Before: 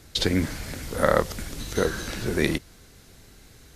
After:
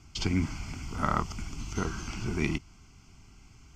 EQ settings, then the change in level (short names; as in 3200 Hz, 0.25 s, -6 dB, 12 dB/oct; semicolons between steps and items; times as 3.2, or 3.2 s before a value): air absorption 52 m; fixed phaser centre 2600 Hz, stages 8; -1.5 dB